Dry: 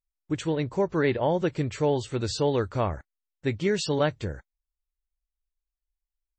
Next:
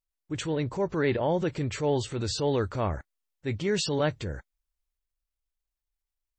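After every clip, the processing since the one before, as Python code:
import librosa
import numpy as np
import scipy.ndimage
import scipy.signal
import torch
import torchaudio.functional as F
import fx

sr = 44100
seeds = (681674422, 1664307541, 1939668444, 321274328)

y = fx.transient(x, sr, attack_db=-5, sustain_db=4)
y = y * 10.0 ** (-1.0 / 20.0)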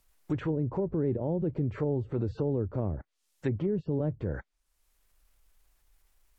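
y = fx.env_lowpass_down(x, sr, base_hz=390.0, full_db=-25.5)
y = fx.high_shelf(y, sr, hz=5200.0, db=9.0)
y = fx.band_squash(y, sr, depth_pct=70)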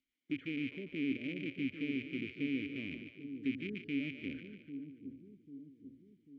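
y = fx.rattle_buzz(x, sr, strikes_db=-30.0, level_db=-23.0)
y = fx.vowel_filter(y, sr, vowel='i')
y = fx.echo_split(y, sr, split_hz=420.0, low_ms=793, high_ms=146, feedback_pct=52, wet_db=-8.0)
y = y * 10.0 ** (1.0 / 20.0)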